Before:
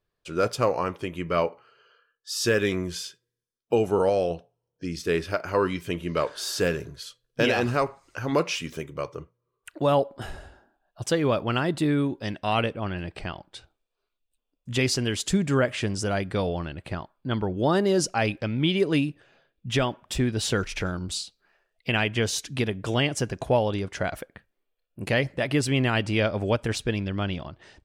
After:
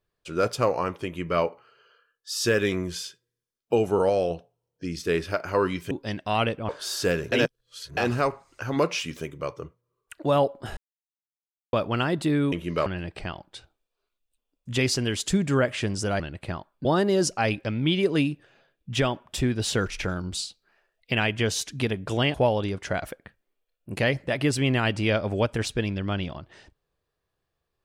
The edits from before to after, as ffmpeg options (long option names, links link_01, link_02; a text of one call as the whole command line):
ffmpeg -i in.wav -filter_complex "[0:a]asplit=12[link_01][link_02][link_03][link_04][link_05][link_06][link_07][link_08][link_09][link_10][link_11][link_12];[link_01]atrim=end=5.912[link_13];[link_02]atrim=start=12.078:end=12.862[link_14];[link_03]atrim=start=6.248:end=6.882[link_15];[link_04]atrim=start=6.878:end=7.532,asetpts=PTS-STARTPTS,areverse[link_16];[link_05]atrim=start=7.528:end=10.33,asetpts=PTS-STARTPTS,afade=type=out:start_time=2.798:duration=0.004:curve=hsin[link_17];[link_06]atrim=start=10.33:end=11.29,asetpts=PTS-STARTPTS,volume=0[link_18];[link_07]atrim=start=11.29:end=12.082,asetpts=PTS-STARTPTS,afade=type=in:duration=0.004:curve=hsin[link_19];[link_08]atrim=start=5.908:end=6.252[link_20];[link_09]atrim=start=12.858:end=16.202[link_21];[link_10]atrim=start=16.628:end=17.282[link_22];[link_11]atrim=start=17.618:end=23.112[link_23];[link_12]atrim=start=23.438[link_24];[link_13][link_14]acrossfade=duration=0.004:curve1=hsin:curve2=hsin[link_25];[link_25][link_15]acrossfade=duration=0.004:curve1=hsin:curve2=hsin[link_26];[link_26][link_16]acrossfade=duration=0.004:curve1=hsin:curve2=hsin[link_27];[link_17][link_18][link_19]concat=n=3:v=0:a=1[link_28];[link_27][link_28]acrossfade=duration=0.004:curve1=hsin:curve2=hsin[link_29];[link_29][link_20]acrossfade=duration=0.004:curve1=hsin:curve2=hsin[link_30];[link_30][link_21]acrossfade=duration=0.004:curve1=hsin:curve2=hsin[link_31];[link_31][link_22]acrossfade=duration=0.004:curve1=hsin:curve2=hsin[link_32];[link_32][link_23]acrossfade=duration=0.004:curve1=hsin:curve2=hsin[link_33];[link_33][link_24]acrossfade=duration=0.004:curve1=hsin:curve2=hsin" out.wav